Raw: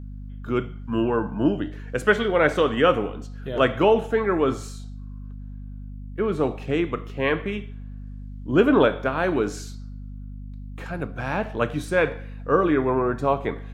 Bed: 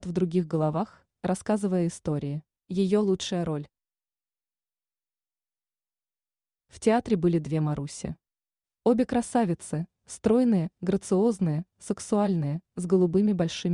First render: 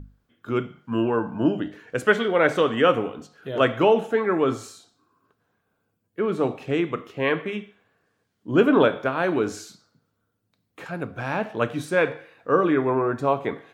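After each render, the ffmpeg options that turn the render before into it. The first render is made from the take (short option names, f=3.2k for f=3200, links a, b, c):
-af "bandreject=f=50:t=h:w=6,bandreject=f=100:t=h:w=6,bandreject=f=150:t=h:w=6,bandreject=f=200:t=h:w=6,bandreject=f=250:t=h:w=6"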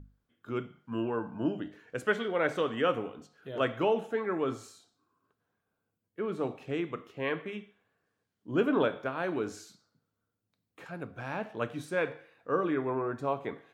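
-af "volume=-9.5dB"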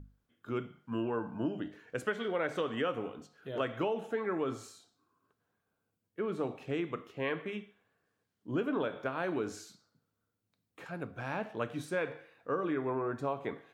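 -af "acompressor=threshold=-29dB:ratio=6"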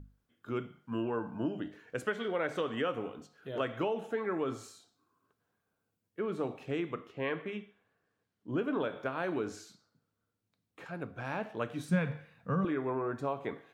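-filter_complex "[0:a]asettb=1/sr,asplit=3[a][b][c];[a]atrim=end=6.934[d];[b]atrim=start=6.93:end=8.68,asetpts=PTS-STARTPTS,afade=t=in:d=0.004:c=qsin,afade=t=out:st=1.746:d=0.004:c=qsin,highshelf=f=6.6k:g=-9[e];[c]atrim=start=8.676[f];[d][e]acrossfade=d=0.004:c1=hsin:c2=qsin[g];[g][f]acrossfade=d=0.004:c1=qsin:c2=hsin,asettb=1/sr,asplit=3[h][i][j];[h]atrim=end=9.414[k];[i]atrim=start=9.41:end=11.25,asetpts=PTS-STARTPTS,afade=t=in:d=0.004:c=qsin,afade=t=out:st=1.836:d=0.004:c=qsin,highshelf=f=7.8k:g=-5.5[l];[j]atrim=start=11.246[m];[k][l]acrossfade=d=0.004:c1=hsin:c2=qsin[n];[n][m]acrossfade=d=0.004:c1=qsin:c2=hsin,asettb=1/sr,asplit=3[o][p][q];[o]atrim=end=11.894[r];[p]atrim=start=11.89:end=12.65,asetpts=PTS-STARTPTS,afade=t=in:d=0.004:c=qsin,afade=t=out:st=0.756:d=0.004:c=qsin,lowshelf=f=250:t=q:w=3:g=10.5[s];[q]atrim=start=12.646[t];[r][s]acrossfade=d=0.004:c1=hsin:c2=qsin[u];[u][t]acrossfade=d=0.004:c1=qsin:c2=hsin"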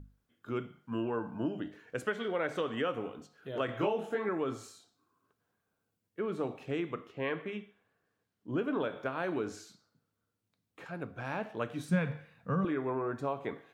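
-filter_complex "[0:a]asettb=1/sr,asplit=3[a][b][c];[a]atrim=end=3.664[d];[b]atrim=start=3.66:end=4.29,asetpts=PTS-STARTPTS,afade=t=in:d=0.004:c=qsin,afade=t=out:st=0.626:d=0.004:c=qsin,asplit=2[e][f];[f]adelay=24,volume=-2dB[g];[e][g]amix=inputs=2:normalize=0,atrim=end_sample=27783[h];[c]atrim=start=4.286[i];[d][h]acrossfade=d=0.004:c1=hsin:c2=qsin[j];[j][i]acrossfade=d=0.004:c1=qsin:c2=hsin"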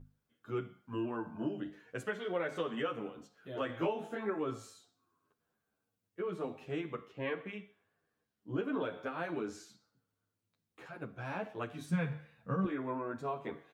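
-filter_complex "[0:a]asplit=2[a][b];[b]adelay=9.7,afreqshift=-0.75[c];[a][c]amix=inputs=2:normalize=1"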